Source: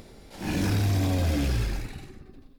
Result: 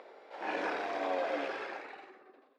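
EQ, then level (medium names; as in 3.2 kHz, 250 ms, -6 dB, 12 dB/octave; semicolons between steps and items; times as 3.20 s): high-pass 480 Hz 24 dB/octave; low-pass 1.7 kHz 12 dB/octave; +3.5 dB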